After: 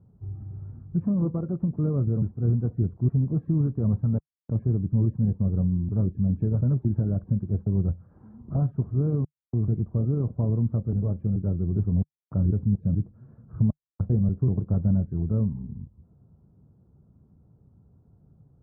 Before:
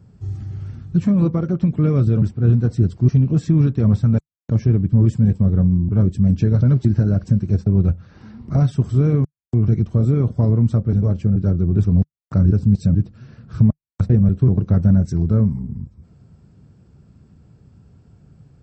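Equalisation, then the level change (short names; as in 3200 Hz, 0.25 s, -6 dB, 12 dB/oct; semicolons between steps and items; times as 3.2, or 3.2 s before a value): LPF 1100 Hz 24 dB/oct; -8.5 dB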